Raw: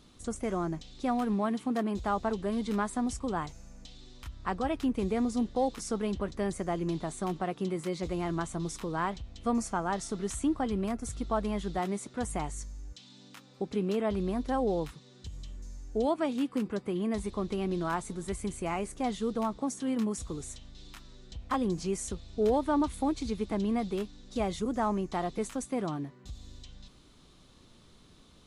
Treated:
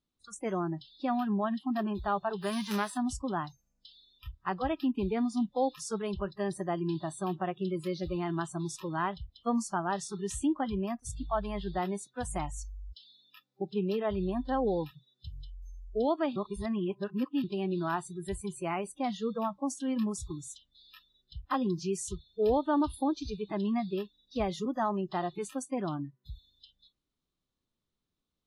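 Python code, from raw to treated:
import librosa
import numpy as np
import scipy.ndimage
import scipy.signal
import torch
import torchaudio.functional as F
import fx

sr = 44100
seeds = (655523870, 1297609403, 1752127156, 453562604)

y = fx.envelope_flatten(x, sr, power=0.6, at=(2.41, 2.96), fade=0.02)
y = fx.edit(y, sr, fx.reverse_span(start_s=16.36, length_s=1.08), tone=tone)
y = fx.noise_reduce_blind(y, sr, reduce_db=29)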